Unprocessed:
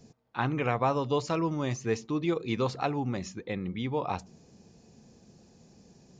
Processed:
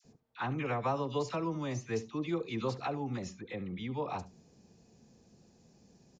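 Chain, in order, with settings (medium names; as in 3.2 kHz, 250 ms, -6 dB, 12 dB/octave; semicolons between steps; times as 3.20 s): phase dispersion lows, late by 47 ms, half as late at 1.1 kHz; on a send: delay 71 ms -18 dB; on the sum: trim -5.5 dB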